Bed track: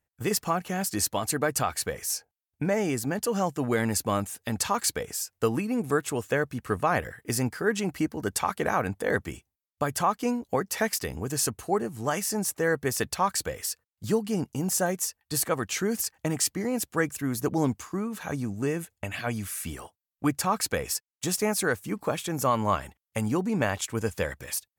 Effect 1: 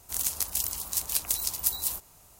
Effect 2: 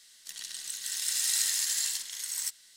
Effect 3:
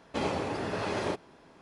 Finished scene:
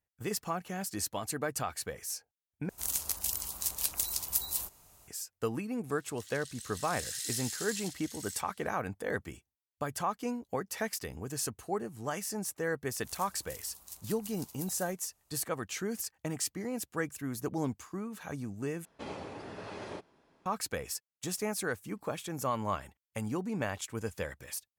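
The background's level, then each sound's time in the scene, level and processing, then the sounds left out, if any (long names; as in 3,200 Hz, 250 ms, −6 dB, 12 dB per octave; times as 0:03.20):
bed track −8 dB
0:02.69: overwrite with 1 −4 dB
0:05.91: mix in 2 −10 dB + high-pass filter 1,400 Hz
0:12.95: mix in 1 −18 dB
0:18.85: overwrite with 3 −11 dB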